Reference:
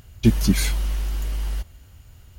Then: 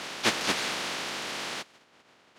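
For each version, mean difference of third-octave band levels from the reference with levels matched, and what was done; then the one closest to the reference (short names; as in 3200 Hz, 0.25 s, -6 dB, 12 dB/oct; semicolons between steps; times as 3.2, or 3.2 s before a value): 11.5 dB: spectral contrast lowered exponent 0.18; BPF 200–4400 Hz; reverse echo 0.88 s -4.5 dB; mismatched tape noise reduction decoder only; gain -5.5 dB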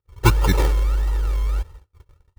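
6.0 dB: decimation with a swept rate 32×, swing 60% 1.6 Hz; bell 1200 Hz +7 dB 0.28 oct; gate -43 dBFS, range -38 dB; comb 2.2 ms, depth 85%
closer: second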